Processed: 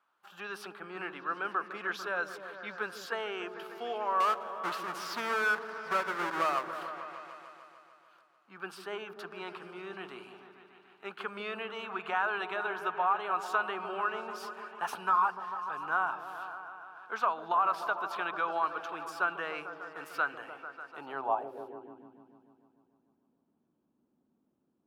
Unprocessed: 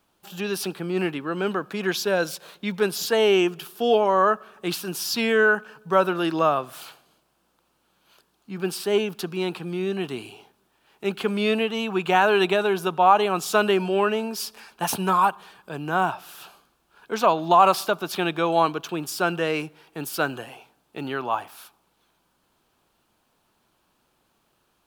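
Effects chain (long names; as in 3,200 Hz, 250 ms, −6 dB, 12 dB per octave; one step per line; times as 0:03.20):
0:04.20–0:06.83: each half-wave held at its own peak
downward compressor 6 to 1, threshold −19 dBFS, peak gain reduction 9 dB
high-shelf EQ 11,000 Hz +11.5 dB
echo whose low-pass opens from repeat to repeat 148 ms, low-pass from 400 Hz, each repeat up 1 octave, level −6 dB
band-pass filter sweep 1,300 Hz → 250 Hz, 0:20.87–0:22.08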